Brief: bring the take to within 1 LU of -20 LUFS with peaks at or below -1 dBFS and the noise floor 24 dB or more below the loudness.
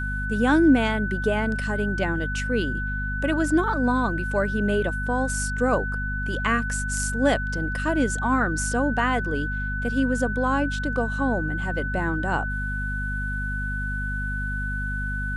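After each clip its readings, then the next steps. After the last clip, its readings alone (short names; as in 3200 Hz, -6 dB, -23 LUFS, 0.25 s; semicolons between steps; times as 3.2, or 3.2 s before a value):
hum 50 Hz; harmonics up to 250 Hz; hum level -27 dBFS; steady tone 1500 Hz; tone level -29 dBFS; loudness -24.5 LUFS; peak -7.5 dBFS; loudness target -20.0 LUFS
-> de-hum 50 Hz, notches 5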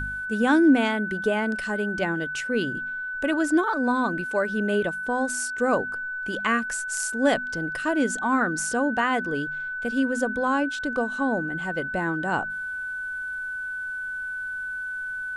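hum none; steady tone 1500 Hz; tone level -29 dBFS
-> notch 1500 Hz, Q 30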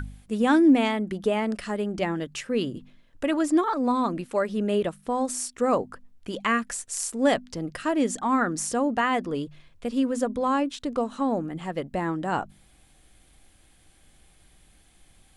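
steady tone none; loudness -26.0 LUFS; peak -9.0 dBFS; loudness target -20.0 LUFS
-> gain +6 dB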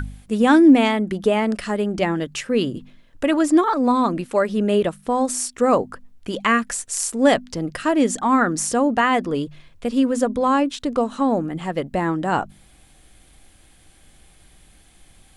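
loudness -20.0 LUFS; peak -3.0 dBFS; noise floor -53 dBFS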